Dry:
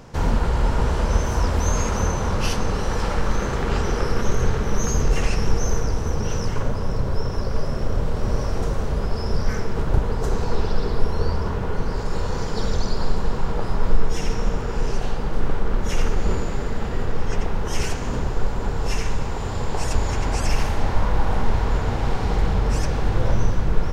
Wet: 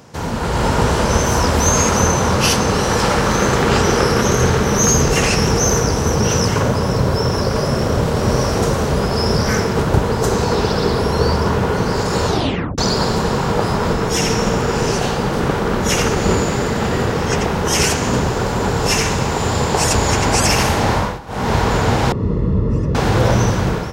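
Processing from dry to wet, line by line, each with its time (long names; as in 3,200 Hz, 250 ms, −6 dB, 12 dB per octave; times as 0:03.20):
0:12.26: tape stop 0.52 s
0:20.94–0:21.53: duck −19.5 dB, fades 0.26 s
0:22.12–0:22.95: moving average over 57 samples
whole clip: high-pass filter 99 Hz 12 dB per octave; high-shelf EQ 4,600 Hz +6.5 dB; automatic gain control gain up to 11 dB; level +1 dB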